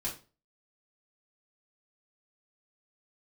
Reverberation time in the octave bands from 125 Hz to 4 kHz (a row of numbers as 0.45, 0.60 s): 0.40, 0.40, 0.35, 0.30, 0.30, 0.30 s